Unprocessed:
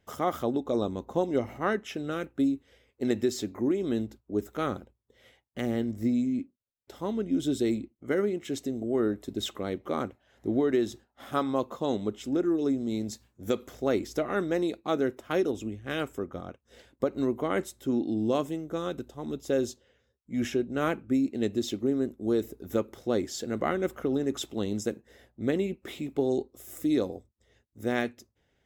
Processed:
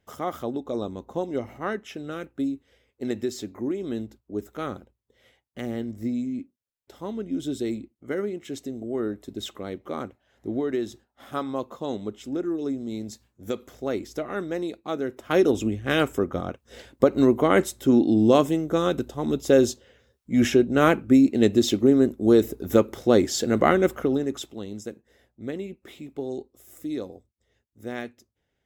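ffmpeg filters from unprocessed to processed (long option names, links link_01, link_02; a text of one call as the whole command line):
ffmpeg -i in.wav -af "volume=9.5dB,afade=type=in:start_time=15.08:duration=0.47:silence=0.281838,afade=type=out:start_time=23.73:duration=0.54:silence=0.398107,afade=type=out:start_time=24.27:duration=0.33:silence=0.473151" out.wav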